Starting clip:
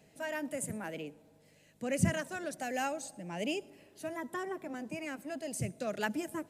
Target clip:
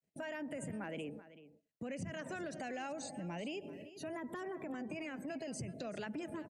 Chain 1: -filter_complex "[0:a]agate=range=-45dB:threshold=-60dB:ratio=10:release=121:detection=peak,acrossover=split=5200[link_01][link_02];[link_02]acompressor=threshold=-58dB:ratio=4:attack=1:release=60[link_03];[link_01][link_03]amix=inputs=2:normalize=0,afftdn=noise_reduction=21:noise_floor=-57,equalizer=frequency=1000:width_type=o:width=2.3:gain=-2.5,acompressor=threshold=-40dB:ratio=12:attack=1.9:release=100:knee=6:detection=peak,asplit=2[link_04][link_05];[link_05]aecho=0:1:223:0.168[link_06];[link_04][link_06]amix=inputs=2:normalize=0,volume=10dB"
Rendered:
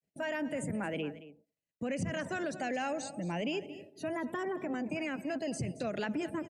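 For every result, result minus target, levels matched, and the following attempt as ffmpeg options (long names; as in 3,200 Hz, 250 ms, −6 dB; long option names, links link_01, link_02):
echo 159 ms early; downward compressor: peak gain reduction −8 dB
-filter_complex "[0:a]agate=range=-45dB:threshold=-60dB:ratio=10:release=121:detection=peak,acrossover=split=5200[link_01][link_02];[link_02]acompressor=threshold=-58dB:ratio=4:attack=1:release=60[link_03];[link_01][link_03]amix=inputs=2:normalize=0,afftdn=noise_reduction=21:noise_floor=-57,equalizer=frequency=1000:width_type=o:width=2.3:gain=-2.5,acompressor=threshold=-40dB:ratio=12:attack=1.9:release=100:knee=6:detection=peak,asplit=2[link_04][link_05];[link_05]aecho=0:1:382:0.168[link_06];[link_04][link_06]amix=inputs=2:normalize=0,volume=10dB"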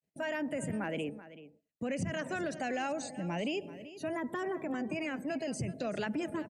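downward compressor: peak gain reduction −8 dB
-filter_complex "[0:a]agate=range=-45dB:threshold=-60dB:ratio=10:release=121:detection=peak,acrossover=split=5200[link_01][link_02];[link_02]acompressor=threshold=-58dB:ratio=4:attack=1:release=60[link_03];[link_01][link_03]amix=inputs=2:normalize=0,afftdn=noise_reduction=21:noise_floor=-57,equalizer=frequency=1000:width_type=o:width=2.3:gain=-2.5,acompressor=threshold=-48.5dB:ratio=12:attack=1.9:release=100:knee=6:detection=peak,asplit=2[link_04][link_05];[link_05]aecho=0:1:382:0.168[link_06];[link_04][link_06]amix=inputs=2:normalize=0,volume=10dB"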